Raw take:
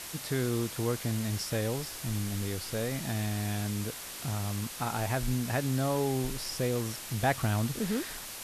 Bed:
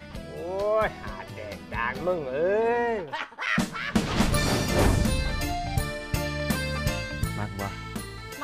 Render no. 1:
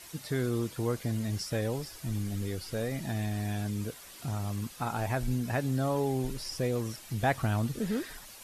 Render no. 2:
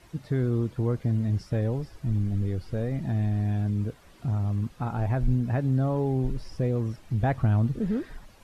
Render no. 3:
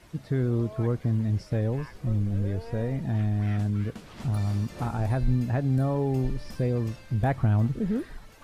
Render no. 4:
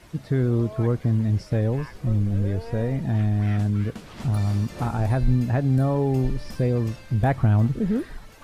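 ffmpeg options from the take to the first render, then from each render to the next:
-af "afftdn=nr=10:nf=-42"
-af "lowpass=f=1.3k:p=1,lowshelf=f=210:g=10"
-filter_complex "[1:a]volume=-19.5dB[a];[0:a][a]amix=inputs=2:normalize=0"
-af "volume=4dB"

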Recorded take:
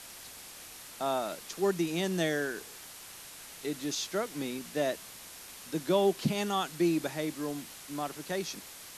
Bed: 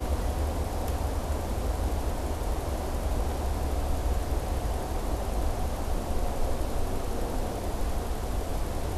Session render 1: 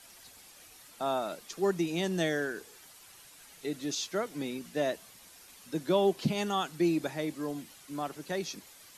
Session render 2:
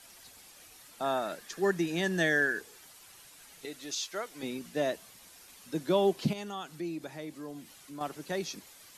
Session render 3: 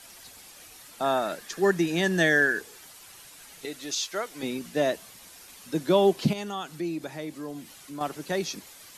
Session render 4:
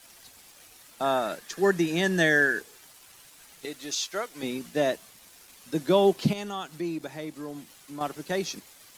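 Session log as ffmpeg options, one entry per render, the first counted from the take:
-af "afftdn=nr=9:nf=-48"
-filter_complex "[0:a]asettb=1/sr,asplit=3[a][b][c];[a]atrim=end=1.044[d];[b]atrim=start=1.04:end=2.61,asetpts=PTS-STARTPTS,afade=t=in:d=0.004:c=qsin,afade=t=out:st=1.566:d=0.004:c=qsin,equalizer=f=1.7k:t=o:w=0.23:g=13.5[e];[c]atrim=start=2.606[f];[d][e]acrossfade=d=0.004:c1=hsin:c2=qsin[g];[g][f]acrossfade=d=0.004:c1=qsin:c2=hsin,asettb=1/sr,asplit=3[h][i][j];[h]atrim=end=3.654[k];[i]atrim=start=3.65:end=4.43,asetpts=PTS-STARTPTS,afade=t=in:d=0.004:c=qsin,afade=t=out:st=0.776:d=0.004:c=qsin,equalizer=f=170:w=0.47:g=-13.5[l];[j]atrim=start=4.426[m];[k][l]acrossfade=d=0.004:c1=hsin:c2=qsin[n];[n][m]acrossfade=d=0.004:c1=qsin:c2=hsin,asettb=1/sr,asplit=3[o][p][q];[o]atrim=end=6.334[r];[p]atrim=start=6.33:end=8.01,asetpts=PTS-STARTPTS,afade=t=in:d=0.004:c=qsin,afade=t=out:st=1.676:d=0.004:c=qsin,acompressor=threshold=-50dB:ratio=1.5:attack=3.2:release=140:knee=1:detection=peak[s];[q]atrim=start=8.006[t];[r][s]acrossfade=d=0.004:c1=hsin:c2=qsin[u];[u][t]acrossfade=d=0.004:c1=qsin:c2=hsin"
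-af "volume=5.5dB"
-af "aeval=exprs='sgn(val(0))*max(abs(val(0))-0.00188,0)':c=same"

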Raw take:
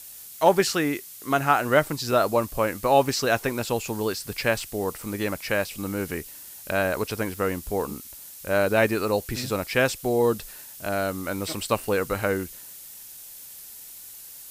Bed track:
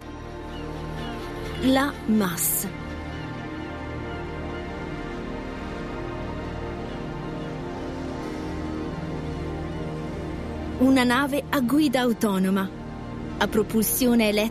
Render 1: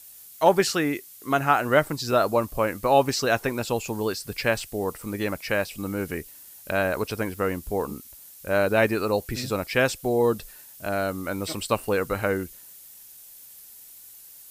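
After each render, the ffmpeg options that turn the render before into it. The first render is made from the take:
-af "afftdn=nr=6:nf=-43"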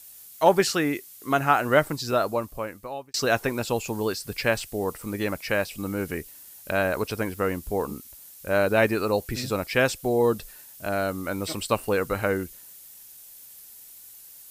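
-filter_complex "[0:a]asplit=2[a][b];[a]atrim=end=3.14,asetpts=PTS-STARTPTS,afade=t=out:st=1.88:d=1.26[c];[b]atrim=start=3.14,asetpts=PTS-STARTPTS,afade=t=in:d=0.004:c=hsin[d];[c][d]concat=n=2:v=0:a=1"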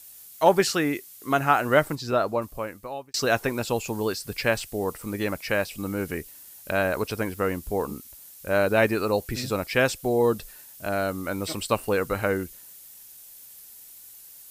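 -filter_complex "[0:a]asettb=1/sr,asplit=3[a][b][c];[a]atrim=end=1.954[d];[b]atrim=start=1.95:end=2.42,asetpts=PTS-STARTPTS,afade=t=in:d=0.004:c=qsin,afade=t=out:st=0.466:d=0.004:c=qsin,aemphasis=mode=reproduction:type=cd[e];[c]atrim=start=2.416[f];[d][e]acrossfade=d=0.004:c1=hsin:c2=qsin[g];[g][f]acrossfade=d=0.004:c1=qsin:c2=hsin"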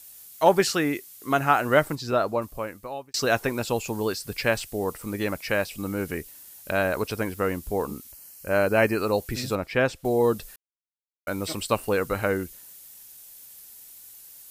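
-filter_complex "[0:a]asettb=1/sr,asplit=3[a][b][c];[a]atrim=end=8.124[d];[b]atrim=start=8.12:end=9.01,asetpts=PTS-STARTPTS,afade=t=in:d=0.004:c=qsin,afade=t=out:st=0.886:d=0.004:c=qsin,asuperstop=centerf=3600:order=8:qfactor=4.3[e];[c]atrim=start=9.006[f];[d][e]acrossfade=d=0.004:c1=hsin:c2=qsin[g];[g][f]acrossfade=d=0.004:c1=qsin:c2=hsin,asettb=1/sr,asplit=3[h][i][j];[h]atrim=end=9.554[k];[i]atrim=start=9.55:end=10.05,asetpts=PTS-STARTPTS,afade=t=in:d=0.004:c=qsin,afade=t=out:st=0.496:d=0.004:c=qsin,lowpass=f=2.1k:p=1[l];[j]atrim=start=10.046[m];[k][l]acrossfade=d=0.004:c1=hsin:c2=qsin[n];[n][m]acrossfade=d=0.004:c1=qsin:c2=hsin,asplit=3[o][p][q];[o]atrim=end=10.56,asetpts=PTS-STARTPTS,afade=t=out:st=10.556:d=0.004:c=hsin[r];[p]atrim=start=10.56:end=11.27,asetpts=PTS-STARTPTS,volume=0[s];[q]atrim=start=11.27,asetpts=PTS-STARTPTS,afade=t=in:d=0.004:c=hsin[t];[r][s][t]concat=n=3:v=0:a=1"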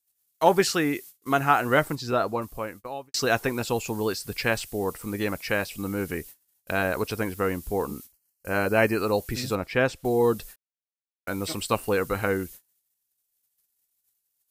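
-af "agate=range=-32dB:threshold=-42dB:ratio=16:detection=peak,bandreject=f=590:w=12"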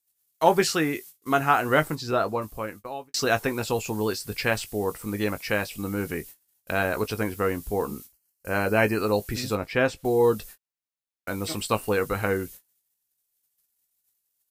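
-filter_complex "[0:a]asplit=2[a][b];[b]adelay=19,volume=-11dB[c];[a][c]amix=inputs=2:normalize=0"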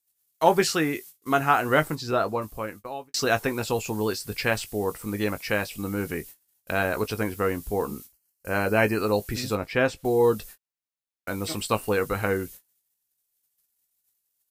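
-af anull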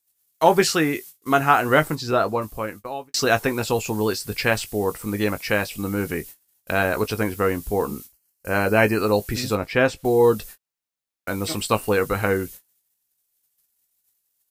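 -af "volume=4dB,alimiter=limit=-3dB:level=0:latency=1"

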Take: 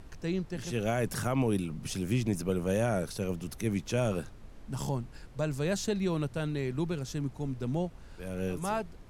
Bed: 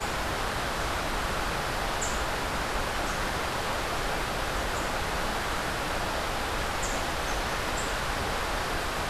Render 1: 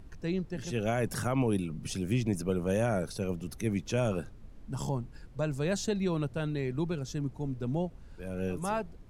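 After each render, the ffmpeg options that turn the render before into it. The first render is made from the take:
-af "afftdn=nr=7:nf=-50"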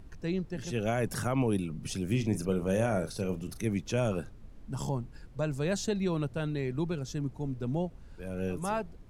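-filter_complex "[0:a]asettb=1/sr,asplit=3[a][b][c];[a]atrim=end=2.064[d];[b]atrim=start=2.06:end=3.65,asetpts=PTS-STARTPTS,afade=t=in:d=0.004:c=qsin,afade=t=out:st=1.586:d=0.004:c=qsin,asplit=2[e][f];[f]adelay=37,volume=-10dB[g];[e][g]amix=inputs=2:normalize=0,atrim=end_sample=70119[h];[c]atrim=start=3.646[i];[d][h]acrossfade=d=0.004:c1=hsin:c2=qsin[j];[j][i]acrossfade=d=0.004:c1=qsin:c2=hsin"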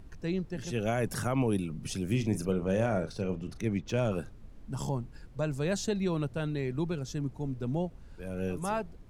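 -filter_complex "[0:a]asettb=1/sr,asplit=3[a][b][c];[a]atrim=end=2.514[d];[b]atrim=start=2.51:end=4.12,asetpts=PTS-STARTPTS,afade=t=in:d=0.004:c=qsin,afade=t=out:st=1.606:d=0.004:c=qsin,adynamicsmooth=sensitivity=6.5:basefreq=4.9k[e];[c]atrim=start=4.116[f];[d][e]acrossfade=d=0.004:c1=hsin:c2=qsin[g];[g][f]acrossfade=d=0.004:c1=qsin:c2=hsin"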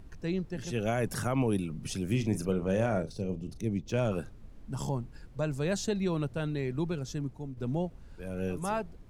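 -filter_complex "[0:a]asettb=1/sr,asplit=3[a][b][c];[a]atrim=end=3.024[d];[b]atrim=start=3.02:end=3.92,asetpts=PTS-STARTPTS,afade=t=in:d=0.004:c=qsin,afade=t=out:st=0.896:d=0.004:c=qsin,equalizer=f=1.5k:t=o:w=1.6:g=-14[e];[c]atrim=start=3.916[f];[d][e]acrossfade=d=0.004:c1=hsin:c2=qsin[g];[g][f]acrossfade=d=0.004:c1=qsin:c2=hsin,asplit=2[h][i];[h]atrim=end=7.57,asetpts=PTS-STARTPTS,afade=t=out:st=7.13:d=0.44:silence=0.398107[j];[i]atrim=start=7.57,asetpts=PTS-STARTPTS,afade=t=in:d=0.004:c=hsin:silence=0.398107[k];[j][k]concat=n=2:v=0:a=1"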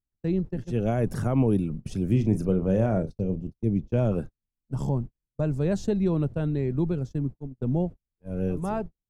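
-af "agate=range=-48dB:threshold=-37dB:ratio=16:detection=peak,tiltshelf=f=930:g=7.5"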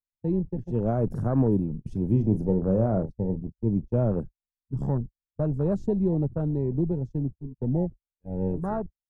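-af "afwtdn=0.02,adynamicequalizer=threshold=0.00158:dfrequency=3200:dqfactor=1.2:tfrequency=3200:tqfactor=1.2:attack=5:release=100:ratio=0.375:range=3:mode=cutabove:tftype=bell"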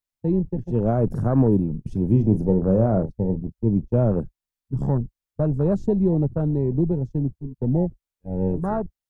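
-af "volume=4.5dB"

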